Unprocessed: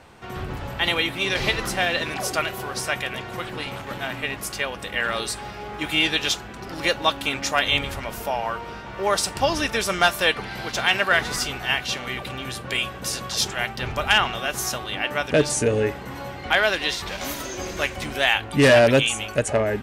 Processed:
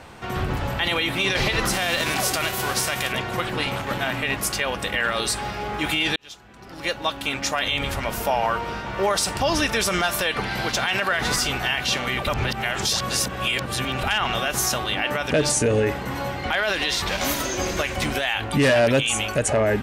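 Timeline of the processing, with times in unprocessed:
1.72–3.11 spectral whitening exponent 0.6
6.16–8.38 fade in
12.27–14.03 reverse
whole clip: bell 400 Hz -2 dB 0.32 oct; limiter -18 dBFS; gain +6 dB

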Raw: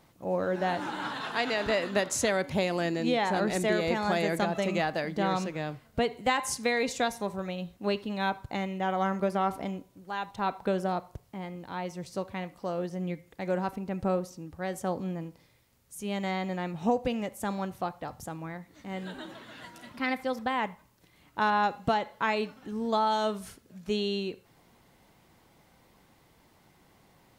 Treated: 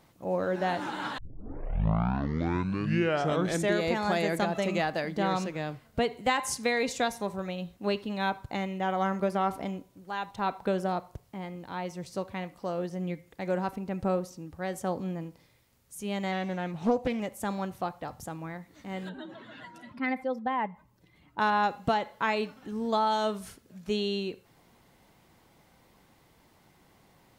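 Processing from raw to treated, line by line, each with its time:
1.18 tape start 2.63 s
16.32–17.2 Doppler distortion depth 0.35 ms
19.09–21.39 spectral contrast raised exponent 1.5

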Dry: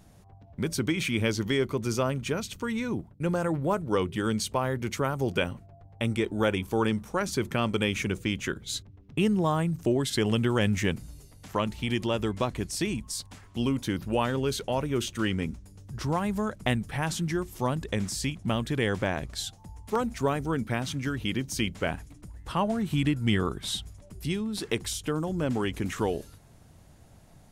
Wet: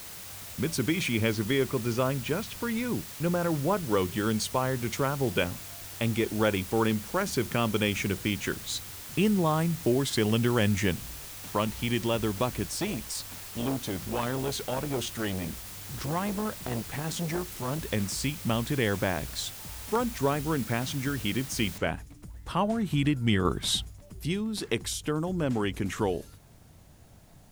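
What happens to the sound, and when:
1.12–3.83 LPF 4300 Hz
12.65–17.79 core saturation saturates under 910 Hz
21.78 noise floor step -43 dB -67 dB
23.45–23.85 gain +4.5 dB

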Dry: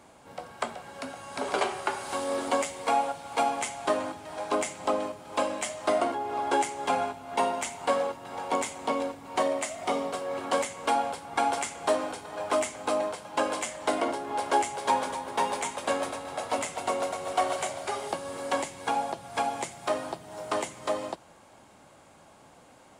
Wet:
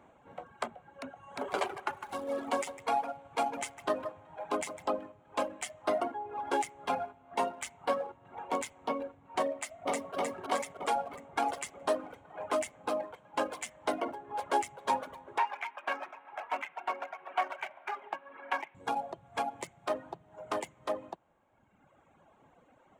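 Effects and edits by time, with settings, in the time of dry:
1.15–4.91 echo 0.155 s -7 dB
9.54–10.15 echo throw 0.31 s, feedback 75%, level -0.5 dB
15.38–18.75 speaker cabinet 470–3200 Hz, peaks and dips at 510 Hz -10 dB, 920 Hz +4 dB, 1600 Hz +6 dB, 2400 Hz +7 dB
whole clip: Wiener smoothing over 9 samples; reverb removal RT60 1.7 s; gain -4 dB

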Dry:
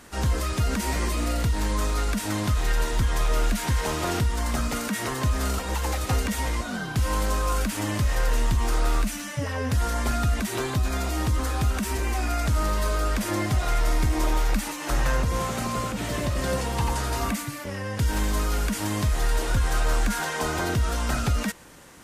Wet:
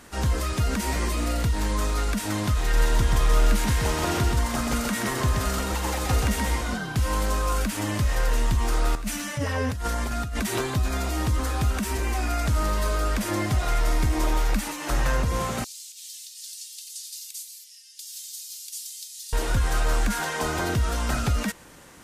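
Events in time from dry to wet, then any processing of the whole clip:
2.61–6.78 echo 0.128 s -3.5 dB
8.95–10.61 negative-ratio compressor -27 dBFS
15.64–19.33 inverse Chebyshev high-pass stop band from 940 Hz, stop band 70 dB

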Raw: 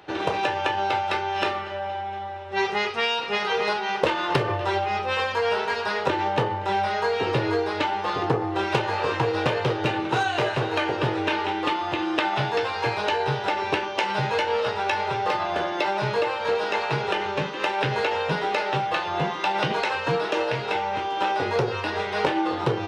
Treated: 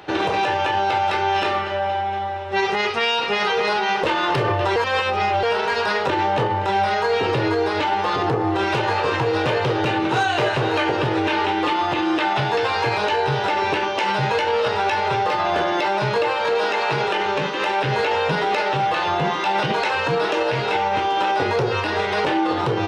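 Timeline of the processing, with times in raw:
4.76–5.43 reverse
16.34–17.61 bell 82 Hz -7 dB 1.9 oct
whole clip: limiter -19.5 dBFS; gain +7.5 dB

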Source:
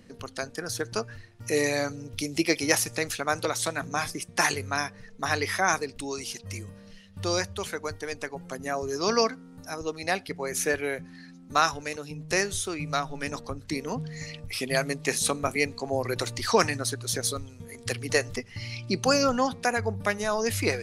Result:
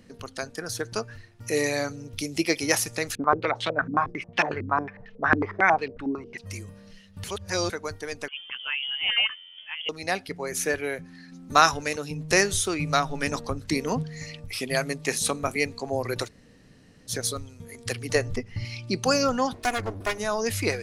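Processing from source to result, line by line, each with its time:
3.15–6.38 stepped low-pass 11 Hz 280–3000 Hz
7.24–7.7 reverse
8.28–9.89 inverted band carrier 3300 Hz
11.32–14.03 gain +5 dB
16.26–17.1 room tone, crossfade 0.06 s
18.15–18.65 tilt -2 dB/oct
19.53–20.18 minimum comb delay 2.8 ms

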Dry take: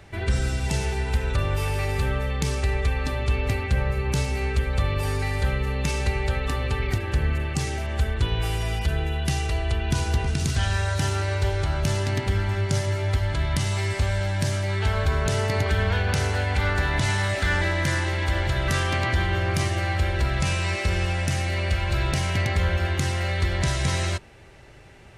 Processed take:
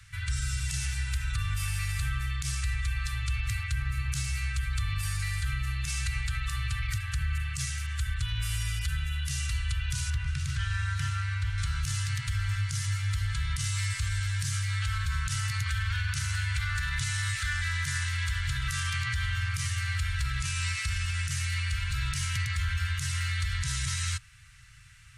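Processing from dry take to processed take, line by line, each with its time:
10.1–11.58 tone controls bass -1 dB, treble -14 dB
whole clip: elliptic band-stop 130–1300 Hz, stop band 40 dB; bell 8800 Hz +8.5 dB 1.5 oct; limiter -18 dBFS; gain -3.5 dB

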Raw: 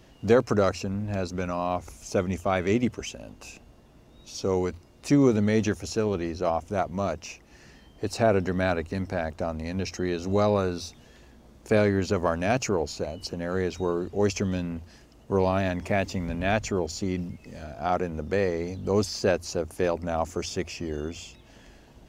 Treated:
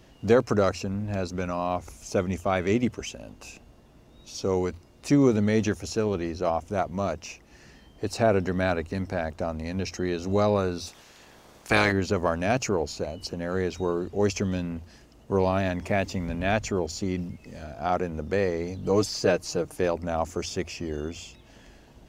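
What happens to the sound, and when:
10.86–11.91 spectral limiter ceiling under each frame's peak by 20 dB
18.82–19.76 comb 6.5 ms

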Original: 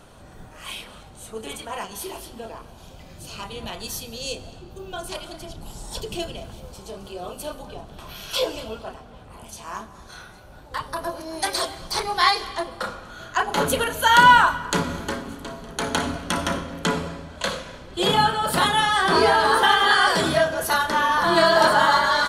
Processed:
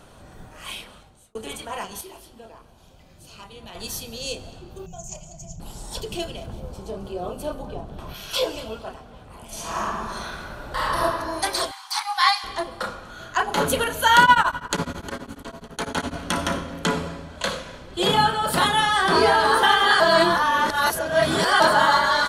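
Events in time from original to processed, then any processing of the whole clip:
0.74–1.35 fade out
2.01–3.75 gain -8 dB
4.86–5.6 EQ curve 110 Hz 0 dB, 170 Hz +7 dB, 280 Hz -21 dB, 700 Hz -6 dB, 1500 Hz -24 dB, 2500 Hz -12 dB, 4000 Hz -23 dB, 6900 Hz +14 dB, 9800 Hz -24 dB, 15000 Hz -7 dB
6.46–8.14 tilt shelf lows +5.5 dB, about 1300 Hz
9.46–11.01 reverb throw, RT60 1.8 s, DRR -8.5 dB
11.71–12.44 brick-wall FIR high-pass 730 Hz
14.23–16.15 beating tremolo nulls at 12 Hz
20–21.6 reverse

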